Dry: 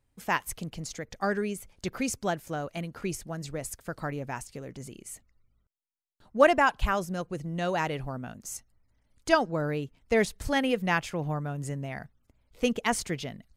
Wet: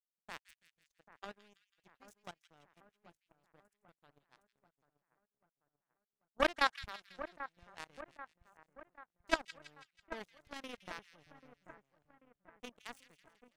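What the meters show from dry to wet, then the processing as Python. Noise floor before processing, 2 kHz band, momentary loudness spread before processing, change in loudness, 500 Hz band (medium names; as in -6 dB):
-73 dBFS, -11.0 dB, 15 LU, -11.0 dB, -16.5 dB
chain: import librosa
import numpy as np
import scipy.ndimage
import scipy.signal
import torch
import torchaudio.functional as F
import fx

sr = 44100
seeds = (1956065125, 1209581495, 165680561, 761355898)

y = fx.power_curve(x, sr, exponent=3.0)
y = fx.level_steps(y, sr, step_db=19)
y = fx.echo_split(y, sr, split_hz=1900.0, low_ms=788, high_ms=164, feedback_pct=52, wet_db=-13)
y = y * librosa.db_to_amplitude(11.0)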